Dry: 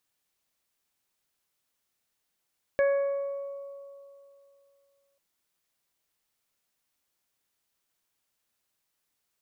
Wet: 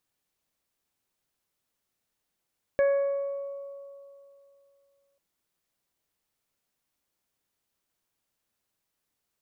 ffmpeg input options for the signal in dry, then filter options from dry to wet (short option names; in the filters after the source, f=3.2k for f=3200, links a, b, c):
-f lavfi -i "aevalsrc='0.106*pow(10,-3*t/2.69)*sin(2*PI*558*t)+0.0133*pow(10,-3*t/2.68)*sin(2*PI*1116*t)+0.0335*pow(10,-3*t/0.76)*sin(2*PI*1674*t)+0.0119*pow(10,-3*t/1.17)*sin(2*PI*2232*t)':d=2.39:s=44100"
-af "tiltshelf=f=810:g=3"